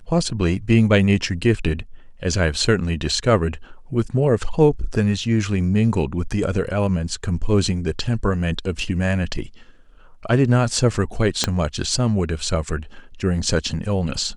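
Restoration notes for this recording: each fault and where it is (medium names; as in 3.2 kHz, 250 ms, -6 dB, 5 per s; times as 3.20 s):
11.44 s: pop -3 dBFS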